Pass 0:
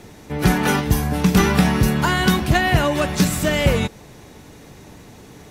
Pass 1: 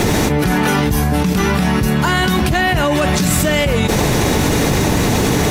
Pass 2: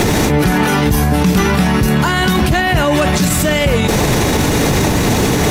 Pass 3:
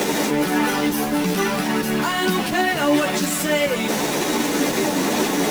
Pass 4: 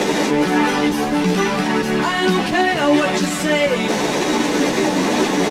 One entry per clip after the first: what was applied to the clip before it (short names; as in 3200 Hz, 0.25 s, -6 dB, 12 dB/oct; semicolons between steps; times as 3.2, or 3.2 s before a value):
requantised 12-bit, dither triangular; fast leveller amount 100%; gain -4 dB
maximiser +12 dB; gain -4 dB
HPF 200 Hz 24 dB/oct; in parallel at -8 dB: wrapped overs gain 17 dB; on the sum: chorus voices 6, 0.8 Hz, delay 12 ms, depth 2.1 ms; gain -3 dB
air absorption 58 m; notch 1400 Hz, Q 22; doubler 16 ms -12.5 dB; gain +3.5 dB